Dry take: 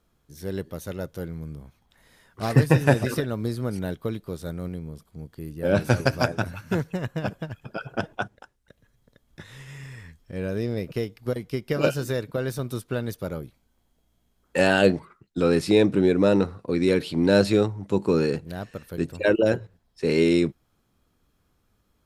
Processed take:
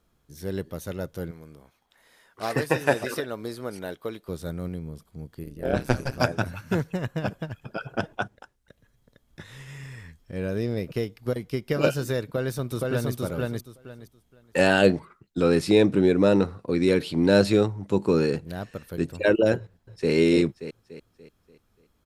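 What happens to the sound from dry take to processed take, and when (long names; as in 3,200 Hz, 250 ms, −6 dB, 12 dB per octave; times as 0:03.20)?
0:01.31–0:04.29: bass and treble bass −15 dB, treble −1 dB
0:05.43–0:06.20: amplitude modulation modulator 130 Hz, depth 85%
0:12.24–0:13.13: delay throw 470 ms, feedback 20%, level −1 dB
0:19.58–0:20.12: delay throw 290 ms, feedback 45%, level −5 dB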